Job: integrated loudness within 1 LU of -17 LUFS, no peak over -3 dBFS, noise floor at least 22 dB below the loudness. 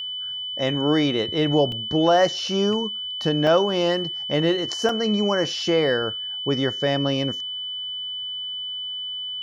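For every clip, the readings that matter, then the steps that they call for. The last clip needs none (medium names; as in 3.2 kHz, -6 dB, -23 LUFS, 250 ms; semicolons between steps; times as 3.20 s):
dropouts 3; longest dropout 1.9 ms; steady tone 3 kHz; tone level -28 dBFS; loudness -22.5 LUFS; peak level -7.0 dBFS; loudness target -17.0 LUFS
-> interpolate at 1.72/3.47/4.89 s, 1.9 ms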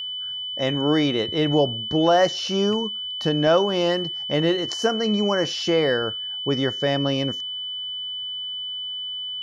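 dropouts 0; steady tone 3 kHz; tone level -28 dBFS
-> band-stop 3 kHz, Q 30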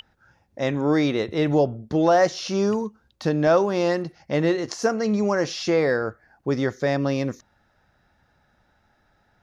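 steady tone not found; loudness -23.0 LUFS; peak level -8.0 dBFS; loudness target -17.0 LUFS
-> trim +6 dB; peak limiter -3 dBFS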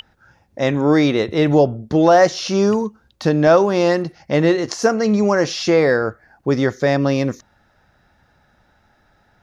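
loudness -17.0 LUFS; peak level -3.0 dBFS; noise floor -60 dBFS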